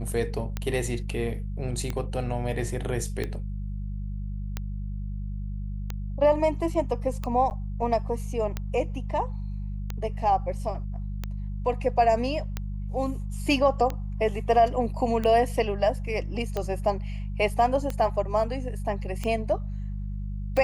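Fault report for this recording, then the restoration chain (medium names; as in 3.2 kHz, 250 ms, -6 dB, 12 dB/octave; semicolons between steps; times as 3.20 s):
hum 50 Hz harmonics 4 -32 dBFS
tick 45 rpm -16 dBFS
7.50–7.51 s: dropout 9.6 ms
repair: de-click; de-hum 50 Hz, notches 4; interpolate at 7.50 s, 9.6 ms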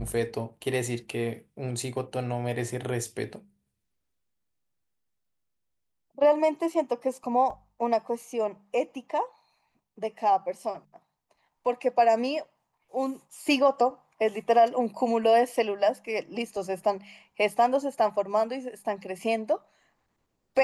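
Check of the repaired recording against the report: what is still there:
nothing left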